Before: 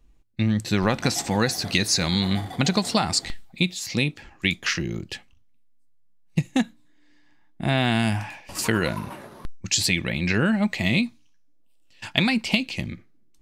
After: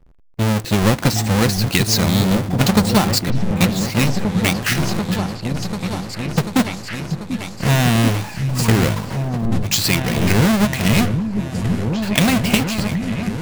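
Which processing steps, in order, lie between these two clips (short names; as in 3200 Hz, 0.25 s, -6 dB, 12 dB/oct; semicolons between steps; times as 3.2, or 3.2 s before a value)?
half-waves squared off; repeats that get brighter 0.74 s, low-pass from 200 Hz, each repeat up 2 oct, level -3 dB; mismatched tape noise reduction decoder only; gain +1 dB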